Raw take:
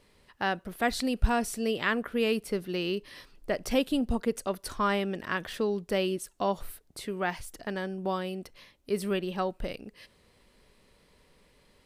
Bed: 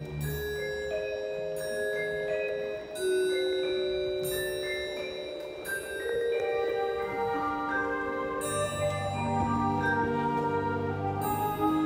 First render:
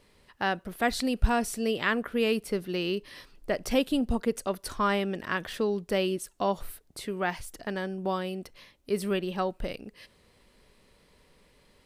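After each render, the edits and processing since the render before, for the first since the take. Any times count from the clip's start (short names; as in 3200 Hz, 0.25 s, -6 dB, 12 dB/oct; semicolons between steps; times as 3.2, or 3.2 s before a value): gain +1 dB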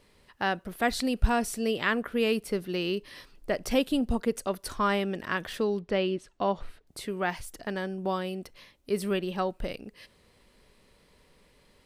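5.79–6.87 LPF 3700 Hz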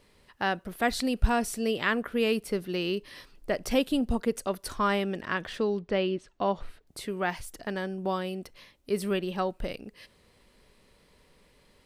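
5.2–6.46 bell 13000 Hz -13.5 dB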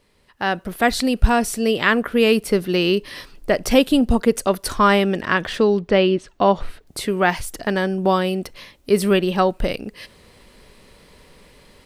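AGC gain up to 12.5 dB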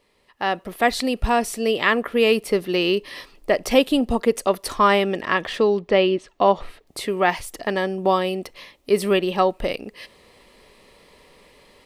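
tone controls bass -9 dB, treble -4 dB; notch 1500 Hz, Q 6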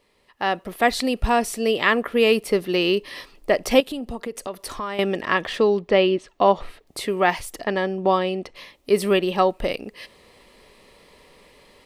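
3.8–4.99 compressor 3:1, threshold -30 dBFS; 7.64–8.55 air absorption 80 m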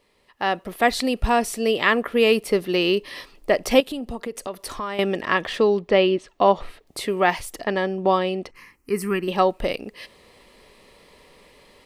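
8.51–9.28 fixed phaser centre 1500 Hz, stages 4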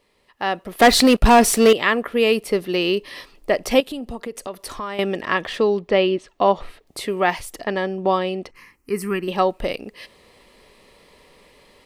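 0.79–1.73 sample leveller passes 3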